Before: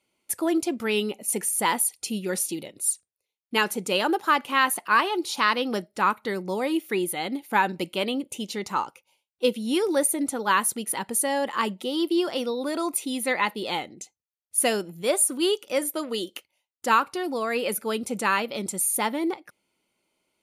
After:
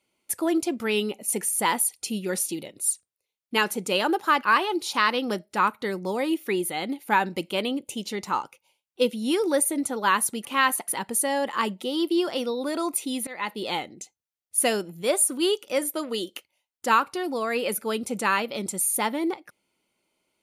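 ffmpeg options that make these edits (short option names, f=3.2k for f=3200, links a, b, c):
-filter_complex "[0:a]asplit=5[a][b][c][d][e];[a]atrim=end=4.432[f];[b]atrim=start=4.858:end=10.882[g];[c]atrim=start=4.428:end=4.862[h];[d]atrim=start=10.878:end=13.27,asetpts=PTS-STARTPTS,afade=t=out:st=2.388:d=0.004:c=hsin:silence=0.0794328[i];[e]atrim=start=13.27,asetpts=PTS-STARTPTS,afade=t=in:d=0.35:silence=0.0794328[j];[f][g]acrossfade=d=0.004:c1=hsin:c2=hsin[k];[k][h]acrossfade=d=0.004:c1=hsin:c2=hsin[l];[i][j]concat=n=2:v=0:a=1[m];[l][m]acrossfade=d=0.004:c1=hsin:c2=hsin"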